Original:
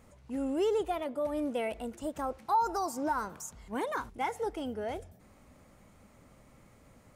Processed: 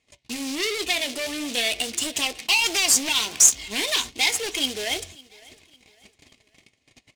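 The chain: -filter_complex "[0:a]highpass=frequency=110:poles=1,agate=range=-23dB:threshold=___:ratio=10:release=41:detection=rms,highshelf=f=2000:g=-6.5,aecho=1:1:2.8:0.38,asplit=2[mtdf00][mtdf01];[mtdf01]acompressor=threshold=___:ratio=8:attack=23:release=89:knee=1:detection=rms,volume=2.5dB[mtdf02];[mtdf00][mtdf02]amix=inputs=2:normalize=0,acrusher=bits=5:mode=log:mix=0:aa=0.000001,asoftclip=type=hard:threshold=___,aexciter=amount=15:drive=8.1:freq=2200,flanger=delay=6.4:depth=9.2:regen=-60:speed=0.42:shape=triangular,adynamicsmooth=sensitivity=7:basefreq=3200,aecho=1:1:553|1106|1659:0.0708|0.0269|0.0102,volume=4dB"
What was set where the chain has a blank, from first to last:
-58dB, -41dB, -29dB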